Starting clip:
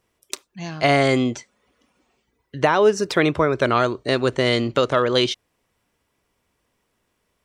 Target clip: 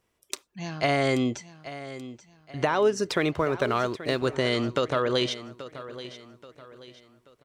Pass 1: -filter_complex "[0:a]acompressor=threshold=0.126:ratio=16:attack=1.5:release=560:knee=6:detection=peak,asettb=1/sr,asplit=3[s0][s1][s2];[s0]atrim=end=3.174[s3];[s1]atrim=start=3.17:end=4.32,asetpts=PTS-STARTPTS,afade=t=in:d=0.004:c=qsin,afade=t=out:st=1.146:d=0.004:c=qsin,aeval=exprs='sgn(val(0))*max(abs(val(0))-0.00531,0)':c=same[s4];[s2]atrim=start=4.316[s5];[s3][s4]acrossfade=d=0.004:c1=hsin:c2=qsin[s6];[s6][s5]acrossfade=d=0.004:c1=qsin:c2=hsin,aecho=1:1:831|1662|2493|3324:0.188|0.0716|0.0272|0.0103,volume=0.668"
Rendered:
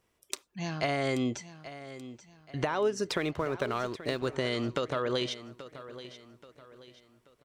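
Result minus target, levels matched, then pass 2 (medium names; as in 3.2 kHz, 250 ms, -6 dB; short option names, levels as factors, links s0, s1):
compression: peak gain reduction +6.5 dB
-filter_complex "[0:a]acompressor=threshold=0.299:ratio=16:attack=1.5:release=560:knee=6:detection=peak,asettb=1/sr,asplit=3[s0][s1][s2];[s0]atrim=end=3.174[s3];[s1]atrim=start=3.17:end=4.32,asetpts=PTS-STARTPTS,afade=t=in:d=0.004:c=qsin,afade=t=out:st=1.146:d=0.004:c=qsin,aeval=exprs='sgn(val(0))*max(abs(val(0))-0.00531,0)':c=same[s4];[s2]atrim=start=4.316[s5];[s3][s4]acrossfade=d=0.004:c1=hsin:c2=qsin[s6];[s6][s5]acrossfade=d=0.004:c1=qsin:c2=hsin,aecho=1:1:831|1662|2493|3324:0.188|0.0716|0.0272|0.0103,volume=0.668"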